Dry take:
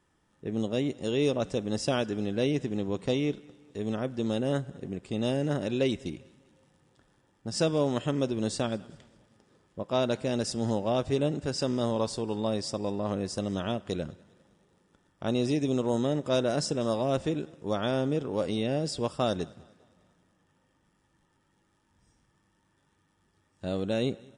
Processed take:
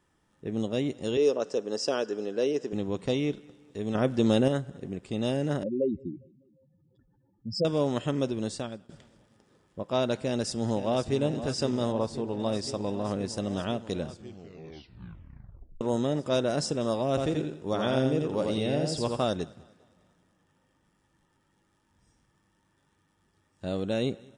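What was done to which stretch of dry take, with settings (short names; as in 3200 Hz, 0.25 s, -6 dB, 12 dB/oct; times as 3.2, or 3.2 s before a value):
1.17–2.73 speaker cabinet 340–8100 Hz, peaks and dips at 440 Hz +7 dB, 760 Hz -3 dB, 2200 Hz -8 dB, 3600 Hz -8 dB, 5200 Hz +6 dB
3.95–4.48 gain +6.5 dB
5.63–7.65 spectral contrast raised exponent 3
8.28–8.89 fade out, to -14 dB
10.19–11.2 echo throw 0.52 s, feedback 85%, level -11.5 dB
11.92–12.4 high shelf 2500 Hz -10 dB
14.08 tape stop 1.73 s
17.09–19.27 feedback echo 84 ms, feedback 27%, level -3.5 dB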